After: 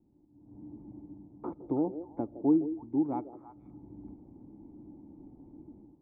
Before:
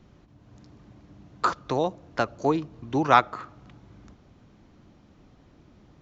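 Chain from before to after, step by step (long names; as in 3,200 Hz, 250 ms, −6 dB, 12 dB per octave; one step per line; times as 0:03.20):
dynamic equaliser 910 Hz, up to −5 dB, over −39 dBFS, Q 2.8
automatic gain control gain up to 16 dB
formant resonators in series u
echo through a band-pass that steps 162 ms, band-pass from 450 Hz, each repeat 1.4 octaves, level −8.5 dB
level −4 dB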